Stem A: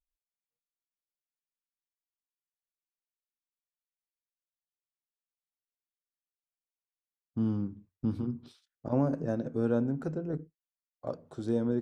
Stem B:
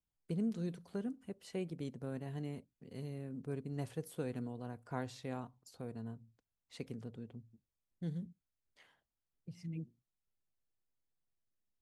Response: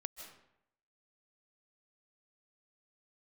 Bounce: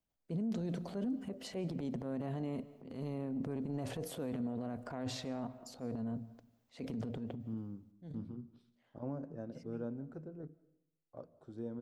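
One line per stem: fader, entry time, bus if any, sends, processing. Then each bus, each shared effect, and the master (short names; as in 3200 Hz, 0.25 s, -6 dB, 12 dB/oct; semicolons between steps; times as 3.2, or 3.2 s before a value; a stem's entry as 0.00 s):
-14.5 dB, 0.10 s, send -10 dB, high shelf 2900 Hz -10.5 dB
7.59 s -1.5 dB -> 8.21 s -14.5 dB, 0.00 s, send -6.5 dB, fifteen-band EQ 250 Hz +8 dB, 630 Hz +10 dB, 10000 Hz -8 dB; transient shaper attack -8 dB, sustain +10 dB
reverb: on, RT60 0.75 s, pre-delay 0.115 s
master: limiter -30 dBFS, peak gain reduction 10 dB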